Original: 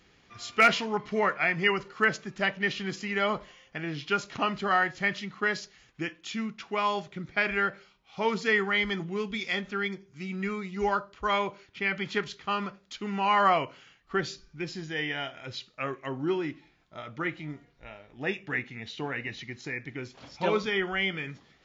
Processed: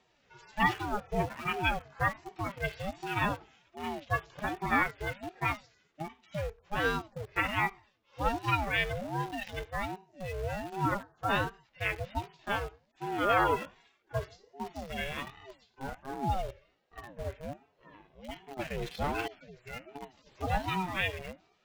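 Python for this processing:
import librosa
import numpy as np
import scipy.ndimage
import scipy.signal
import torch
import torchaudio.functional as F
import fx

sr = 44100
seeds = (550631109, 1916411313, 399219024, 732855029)

p1 = fx.hpss_only(x, sr, part='harmonic')
p2 = fx.leveller(p1, sr, passes=3, at=(18.59, 19.28))
p3 = fx.quant_dither(p2, sr, seeds[0], bits=6, dither='none')
p4 = p2 + (p3 * 10.0 ** (-8.0 / 20.0))
p5 = fx.ring_lfo(p4, sr, carrier_hz=410.0, swing_pct=40, hz=1.3)
y = p5 * 10.0 ** (-2.0 / 20.0)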